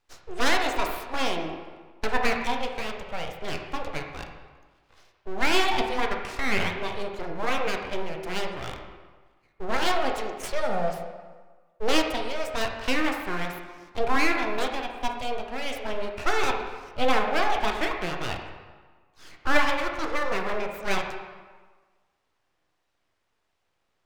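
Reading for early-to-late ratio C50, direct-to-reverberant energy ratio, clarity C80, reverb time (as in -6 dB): 4.5 dB, 2.0 dB, 6.5 dB, 1.4 s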